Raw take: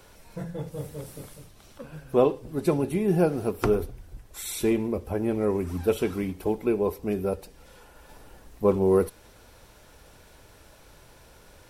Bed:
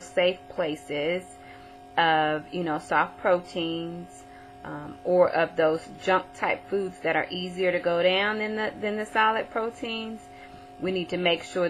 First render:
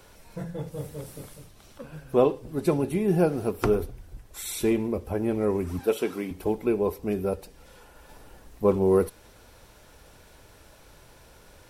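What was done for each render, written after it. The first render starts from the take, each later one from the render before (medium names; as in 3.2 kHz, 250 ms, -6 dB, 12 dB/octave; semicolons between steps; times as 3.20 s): 5.79–6.31 s: high-pass 250 Hz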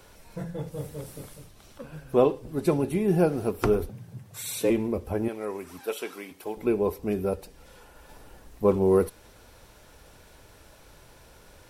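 3.89–4.70 s: frequency shift +85 Hz; 5.28–6.57 s: high-pass 940 Hz 6 dB/octave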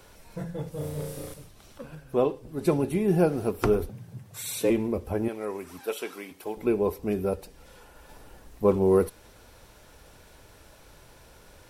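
0.78–1.34 s: flutter echo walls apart 5.7 m, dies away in 0.8 s; 1.95–2.61 s: gain -3.5 dB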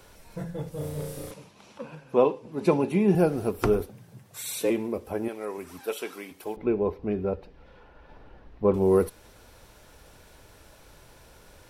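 1.31–3.15 s: cabinet simulation 150–9900 Hz, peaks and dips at 200 Hz +7 dB, 500 Hz +4 dB, 940 Hz +9 dB, 2.5 kHz +6 dB, 8.6 kHz -9 dB; 3.82–5.58 s: high-pass 250 Hz 6 dB/octave; 6.56–8.74 s: distance through air 300 m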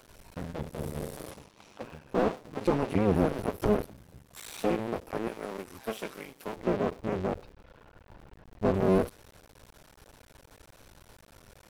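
cycle switcher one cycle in 2, muted; slew-rate limiter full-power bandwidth 58 Hz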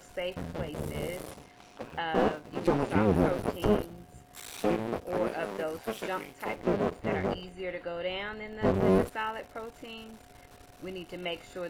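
add bed -12 dB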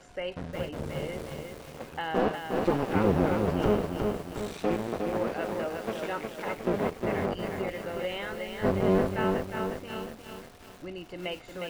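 distance through air 57 m; bit-crushed delay 359 ms, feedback 55%, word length 8-bit, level -4 dB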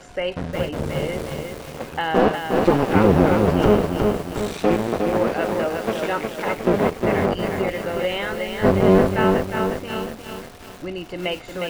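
trim +9.5 dB; peak limiter -3 dBFS, peak gain reduction 2 dB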